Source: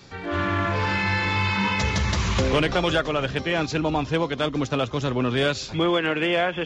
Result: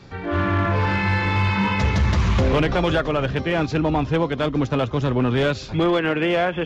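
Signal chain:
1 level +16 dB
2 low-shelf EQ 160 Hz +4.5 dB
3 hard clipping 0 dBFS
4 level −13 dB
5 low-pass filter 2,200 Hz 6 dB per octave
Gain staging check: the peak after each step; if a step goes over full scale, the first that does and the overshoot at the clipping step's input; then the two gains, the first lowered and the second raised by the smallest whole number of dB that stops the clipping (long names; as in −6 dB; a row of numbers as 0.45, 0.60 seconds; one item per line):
+6.0, +6.0, 0.0, −13.0, −13.0 dBFS
step 1, 6.0 dB
step 1 +10 dB, step 4 −7 dB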